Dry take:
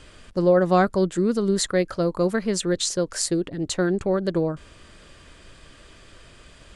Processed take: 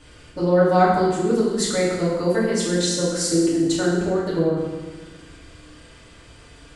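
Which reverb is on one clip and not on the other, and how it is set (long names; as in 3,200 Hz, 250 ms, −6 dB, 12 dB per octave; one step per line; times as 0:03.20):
feedback delay network reverb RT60 1.3 s, low-frequency decay 1.3×, high-frequency decay 0.85×, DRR −8 dB
level −6 dB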